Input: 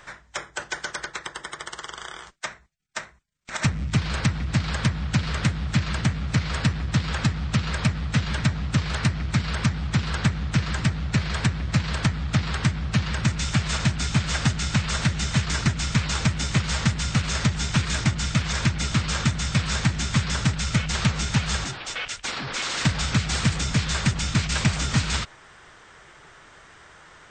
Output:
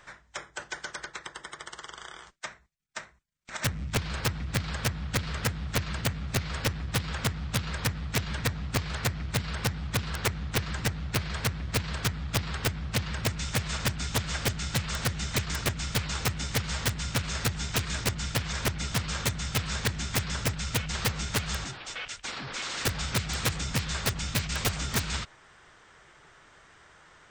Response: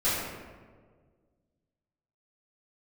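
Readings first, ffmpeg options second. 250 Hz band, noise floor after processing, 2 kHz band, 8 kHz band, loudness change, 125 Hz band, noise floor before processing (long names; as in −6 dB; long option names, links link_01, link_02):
−9.5 dB, −57 dBFS, −5.0 dB, −3.0 dB, −5.5 dB, −8.5 dB, −50 dBFS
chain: -af "aeval=exprs='(mod(4.47*val(0)+1,2)-1)/4.47':channel_layout=same,volume=-6.5dB"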